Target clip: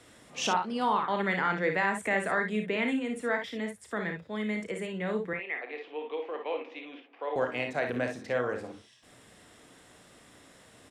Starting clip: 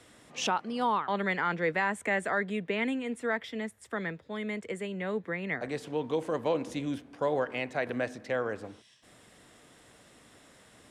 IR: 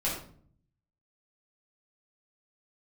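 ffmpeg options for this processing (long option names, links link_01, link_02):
-filter_complex "[0:a]asettb=1/sr,asplit=3[link_01][link_02][link_03];[link_01]atrim=end=5.334[link_04];[link_02]atrim=start=5.33:end=7.36,asetpts=PTS-STARTPTS,afade=type=in:duration=0.004:curve=qsin,afade=type=out:start_time=2.026:duration=0.004:curve=qsin,highpass=frequency=420:width=0.5412,highpass=frequency=420:width=1.3066,equalizer=frequency=420:width_type=q:width=4:gain=-3,equalizer=frequency=600:width_type=q:width=4:gain=-9,equalizer=frequency=980:width_type=q:width=4:gain=-4,equalizer=frequency=1500:width_type=q:width=4:gain=-9,equalizer=frequency=2500:width_type=q:width=4:gain=4,lowpass=frequency=3000:width=0.5412,lowpass=frequency=3000:width=1.3066[link_05];[link_03]atrim=start=7.356[link_06];[link_04][link_05]acrossfade=duration=0.004:curve1=hsin:curve2=qsin[link_07];[link_07][link_06]acrossfade=duration=0.004:curve1=qsin:curve2=hsin,aecho=1:1:33|56|67:0.335|0.422|0.282"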